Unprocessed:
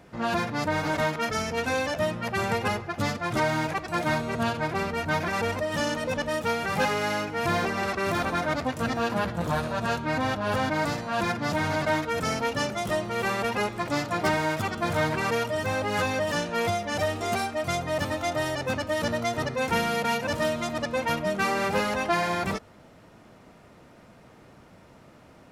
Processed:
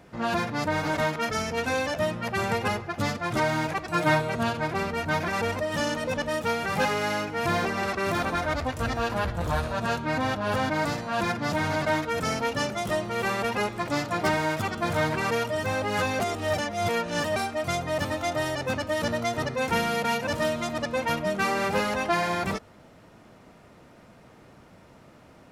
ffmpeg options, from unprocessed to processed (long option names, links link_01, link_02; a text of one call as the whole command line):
ffmpeg -i in.wav -filter_complex "[0:a]asettb=1/sr,asplit=3[link_01][link_02][link_03];[link_01]atrim=end=3.924[link_04];[link_02]atrim=start=3.92:end=4.34,asetpts=PTS-STARTPTS,afade=type=in:duration=0.004:curve=qsin,afade=type=out:start_time=0.416:duration=0.004:curve=qsin,aecho=1:1:6.5:0.71,atrim=end_sample=18522[link_05];[link_03]atrim=start=4.336[link_06];[link_04][link_05]acrossfade=duration=0.004:curve1=hsin:curve2=qsin[link_07];[link_07][link_06]acrossfade=duration=0.004:curve1=qsin:curve2=hsin,asplit=3[link_08][link_09][link_10];[link_08]afade=type=out:start_time=8.35:duration=0.02[link_11];[link_09]asubboost=boost=8.5:cutoff=59,afade=type=in:start_time=8.35:duration=0.02,afade=type=out:start_time=9.73:duration=0.02[link_12];[link_10]afade=type=in:start_time=9.73:duration=0.02[link_13];[link_11][link_12][link_13]amix=inputs=3:normalize=0,asplit=3[link_14][link_15][link_16];[link_14]atrim=end=16.202[link_17];[link_15]atrim=start=16.198:end=17.362,asetpts=PTS-STARTPTS,areverse[link_18];[link_16]atrim=start=17.358[link_19];[link_17][link_18]acrossfade=duration=0.004:curve1=hsin:curve2=hsin[link_20];[link_20][link_19]acrossfade=duration=0.004:curve1=hsin:curve2=hsin" out.wav